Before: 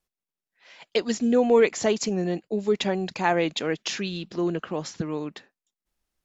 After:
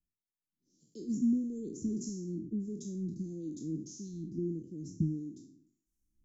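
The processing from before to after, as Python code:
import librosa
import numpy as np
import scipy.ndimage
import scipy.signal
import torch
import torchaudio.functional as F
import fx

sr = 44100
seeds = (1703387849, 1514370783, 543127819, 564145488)

y = fx.spec_trails(x, sr, decay_s=0.6)
y = fx.recorder_agc(y, sr, target_db=-16.0, rise_db_per_s=8.1, max_gain_db=30)
y = scipy.signal.sosfilt(scipy.signal.cheby1(4, 1.0, [320.0, 6000.0], 'bandstop', fs=sr, output='sos'), y)
y = fx.high_shelf(y, sr, hz=4000.0, db=-12.0)
y = fx.harmonic_tremolo(y, sr, hz=1.6, depth_pct=70, crossover_hz=460.0)
y = fx.peak_eq(y, sr, hz=960.0, db=-14.0, octaves=0.72)
y = F.gain(torch.from_numpy(y), -3.0).numpy()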